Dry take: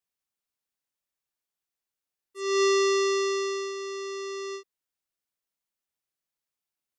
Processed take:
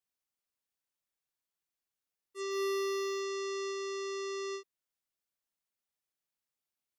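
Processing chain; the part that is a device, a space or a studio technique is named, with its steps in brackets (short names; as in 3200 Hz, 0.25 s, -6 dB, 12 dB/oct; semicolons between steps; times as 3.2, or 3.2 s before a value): clipper into limiter (hard clip -21.5 dBFS, distortion -20 dB; limiter -28.5 dBFS, peak gain reduction 7 dB); gain -3 dB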